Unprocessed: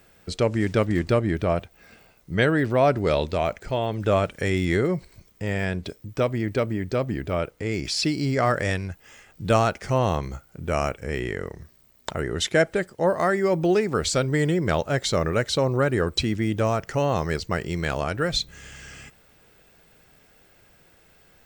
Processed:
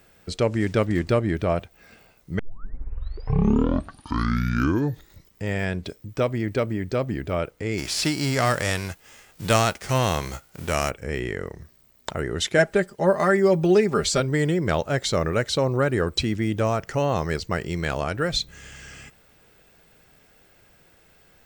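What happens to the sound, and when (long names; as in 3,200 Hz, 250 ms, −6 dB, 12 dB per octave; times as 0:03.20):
0:02.39: tape start 3.09 s
0:07.77–0:10.89: spectral envelope flattened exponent 0.6
0:12.58–0:14.20: comb filter 5 ms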